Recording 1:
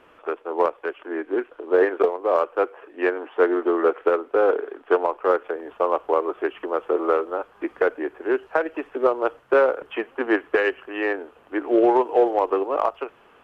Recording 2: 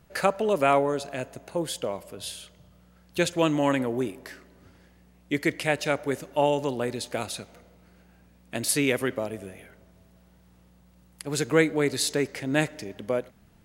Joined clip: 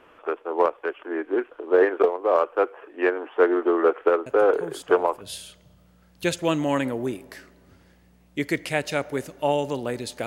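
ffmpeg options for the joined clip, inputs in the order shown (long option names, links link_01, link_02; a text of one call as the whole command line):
ffmpeg -i cue0.wav -i cue1.wav -filter_complex "[1:a]asplit=2[link_01][link_02];[0:a]apad=whole_dur=10.26,atrim=end=10.26,atrim=end=5.212[link_03];[link_02]atrim=start=2.148:end=7.2[link_04];[link_01]atrim=start=1.2:end=2.15,asetpts=PTS-STARTPTS,volume=-6.5dB,afade=type=in:duration=0.004:curve=hsin,afade=type=out:start_time=0.946:duration=0.004:curve=hsin,adelay=4260[link_05];[link_03][link_04]acrossfade=duration=0.004:curve1=hsin:curve2=hsin[link_06];[link_06][link_05]amix=inputs=2:normalize=0" out.wav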